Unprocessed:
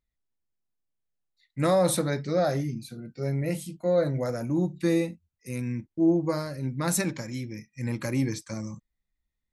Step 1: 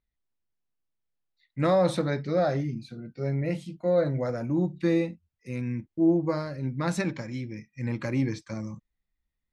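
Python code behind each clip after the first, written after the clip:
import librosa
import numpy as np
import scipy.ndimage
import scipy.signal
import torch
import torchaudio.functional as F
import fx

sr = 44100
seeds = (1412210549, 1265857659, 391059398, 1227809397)

y = scipy.signal.sosfilt(scipy.signal.butter(2, 4000.0, 'lowpass', fs=sr, output='sos'), x)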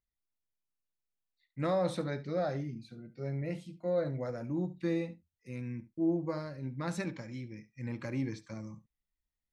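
y = x + 10.0 ** (-17.0 / 20.0) * np.pad(x, (int(71 * sr / 1000.0), 0))[:len(x)]
y = y * librosa.db_to_amplitude(-8.0)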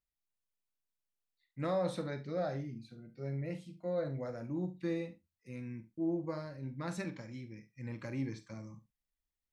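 y = fx.doubler(x, sr, ms=44.0, db=-12)
y = y * librosa.db_to_amplitude(-3.5)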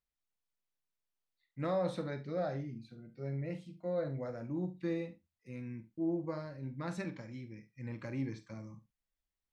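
y = fx.high_shelf(x, sr, hz=6900.0, db=-9.0)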